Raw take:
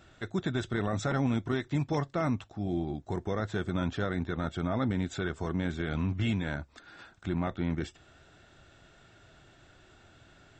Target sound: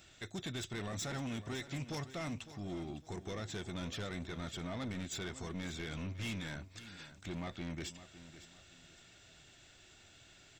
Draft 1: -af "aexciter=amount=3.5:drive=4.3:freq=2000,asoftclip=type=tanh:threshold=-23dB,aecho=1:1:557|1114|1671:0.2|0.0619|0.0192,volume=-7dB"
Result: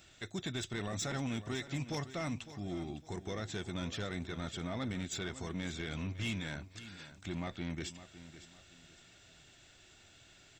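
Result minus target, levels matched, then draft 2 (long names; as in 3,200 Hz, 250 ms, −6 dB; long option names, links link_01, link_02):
soft clipping: distortion −7 dB
-af "aexciter=amount=3.5:drive=4.3:freq=2000,asoftclip=type=tanh:threshold=-29dB,aecho=1:1:557|1114|1671:0.2|0.0619|0.0192,volume=-7dB"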